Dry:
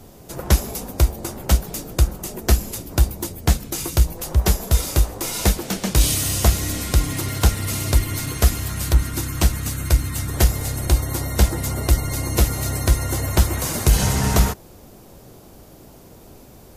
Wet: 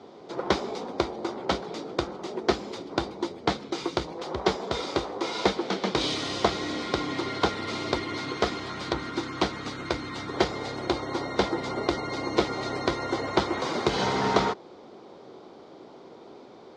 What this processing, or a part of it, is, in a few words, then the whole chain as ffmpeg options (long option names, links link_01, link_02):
phone earpiece: -af "highpass=350,equalizer=frequency=380:width_type=q:width=4:gain=3,equalizer=frequency=620:width_type=q:width=4:gain=-4,equalizer=frequency=1700:width_type=q:width=4:gain=-7,equalizer=frequency=2700:width_type=q:width=4:gain=-10,lowpass=frequency=3900:width=0.5412,lowpass=frequency=3900:width=1.3066,volume=3dB"